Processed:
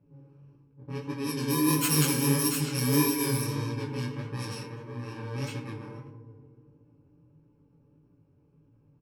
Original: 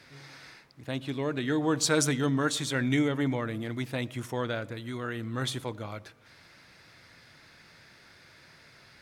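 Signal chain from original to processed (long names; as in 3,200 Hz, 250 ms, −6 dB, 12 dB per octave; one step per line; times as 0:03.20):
samples in bit-reversed order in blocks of 64 samples
feedback delay network reverb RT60 2.9 s, high-frequency decay 0.65×, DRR 4.5 dB
low-pass that shuts in the quiet parts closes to 440 Hz, open at −23 dBFS
chorus effect 1.6 Hz, delay 17 ms, depth 7.2 ms
comb filter 6.9 ms, depth 48%
level +2 dB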